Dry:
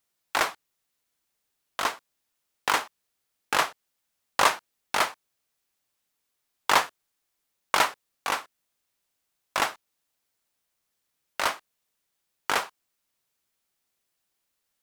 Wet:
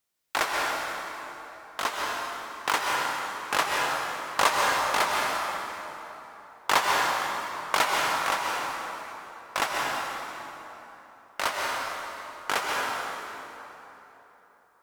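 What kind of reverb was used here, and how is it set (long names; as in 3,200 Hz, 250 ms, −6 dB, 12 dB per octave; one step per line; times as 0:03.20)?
dense smooth reverb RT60 3.6 s, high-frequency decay 0.65×, pre-delay 115 ms, DRR −2.5 dB
level −2 dB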